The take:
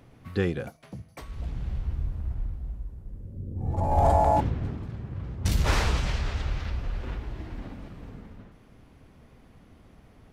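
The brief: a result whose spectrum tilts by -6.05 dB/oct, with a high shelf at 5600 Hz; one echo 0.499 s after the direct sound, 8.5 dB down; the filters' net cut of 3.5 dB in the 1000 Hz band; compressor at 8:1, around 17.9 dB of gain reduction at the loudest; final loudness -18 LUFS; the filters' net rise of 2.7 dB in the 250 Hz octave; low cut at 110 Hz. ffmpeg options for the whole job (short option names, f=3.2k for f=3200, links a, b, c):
-af "highpass=110,equalizer=f=250:t=o:g=4.5,equalizer=f=1k:t=o:g=-5,highshelf=f=5.6k:g=-4.5,acompressor=threshold=-39dB:ratio=8,aecho=1:1:499:0.376,volume=26.5dB"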